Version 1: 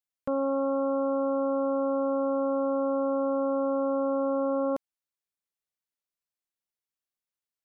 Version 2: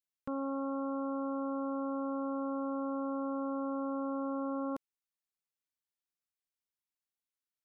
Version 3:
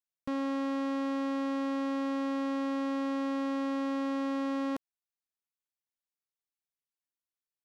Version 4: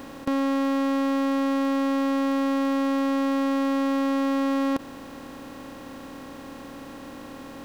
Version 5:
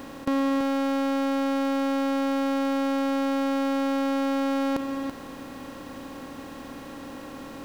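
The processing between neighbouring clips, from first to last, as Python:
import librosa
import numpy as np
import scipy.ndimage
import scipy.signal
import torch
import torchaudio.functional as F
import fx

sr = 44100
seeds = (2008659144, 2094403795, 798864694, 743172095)

y1 = fx.peak_eq(x, sr, hz=610.0, db=-12.5, octaves=0.43)
y1 = F.gain(torch.from_numpy(y1), -5.0).numpy()
y2 = fx.leveller(y1, sr, passes=3)
y3 = fx.bin_compress(y2, sr, power=0.2)
y3 = F.gain(torch.from_numpy(y3), 8.0).numpy()
y4 = y3 + 10.0 ** (-7.5 / 20.0) * np.pad(y3, (int(332 * sr / 1000.0), 0))[:len(y3)]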